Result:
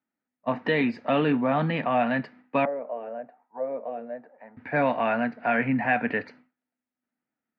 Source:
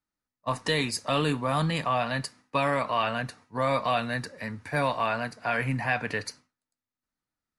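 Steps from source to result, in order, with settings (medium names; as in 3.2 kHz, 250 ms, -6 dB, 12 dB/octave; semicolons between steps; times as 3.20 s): 2.65–4.57 s: auto-wah 440–1000 Hz, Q 4.9, down, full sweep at -21.5 dBFS; cabinet simulation 190–2500 Hz, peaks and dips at 240 Hz +9 dB, 720 Hz +3 dB, 1.1 kHz -8 dB; trim +3.5 dB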